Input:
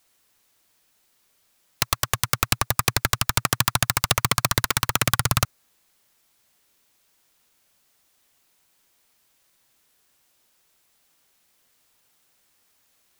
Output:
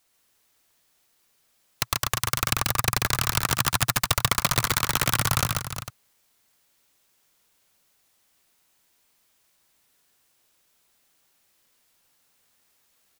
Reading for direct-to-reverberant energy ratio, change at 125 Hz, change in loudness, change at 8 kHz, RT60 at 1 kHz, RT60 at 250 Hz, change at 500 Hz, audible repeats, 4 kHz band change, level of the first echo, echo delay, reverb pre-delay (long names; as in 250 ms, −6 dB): no reverb audible, −1.5 dB, −1.5 dB, −1.5 dB, no reverb audible, no reverb audible, −1.5 dB, 3, −1.5 dB, −3.0 dB, 138 ms, no reverb audible